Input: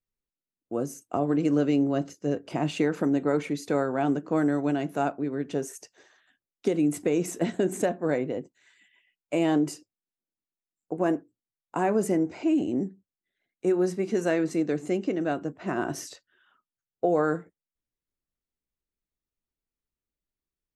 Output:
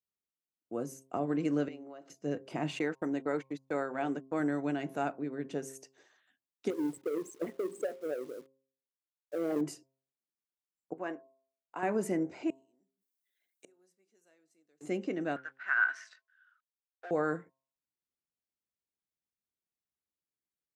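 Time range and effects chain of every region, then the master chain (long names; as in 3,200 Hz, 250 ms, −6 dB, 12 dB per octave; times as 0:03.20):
0:01.68–0:02.10: high-pass filter 560 Hz + high-shelf EQ 4,200 Hz −12 dB + downward compressor, threshold −37 dBFS
0:02.79–0:04.40: noise gate −31 dBFS, range −46 dB + parametric band 100 Hz −6 dB 2.5 octaves
0:06.70–0:09.61: spectral envelope exaggerated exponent 3 + bit-depth reduction 8 bits, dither none + power curve on the samples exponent 1.4
0:10.93–0:11.83: high-pass filter 820 Hz 6 dB per octave + high-frequency loss of the air 120 metres
0:12.50–0:14.81: gate with flip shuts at −34 dBFS, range −34 dB + RIAA equalisation recording
0:15.36–0:17.11: mu-law and A-law mismatch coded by A + high-pass with resonance 1,500 Hz, resonance Q 9.2 + high-frequency loss of the air 120 metres
whole clip: high-pass filter 97 Hz; hum removal 133.5 Hz, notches 8; dynamic equaliser 2,000 Hz, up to +5 dB, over −45 dBFS, Q 1.5; level −7 dB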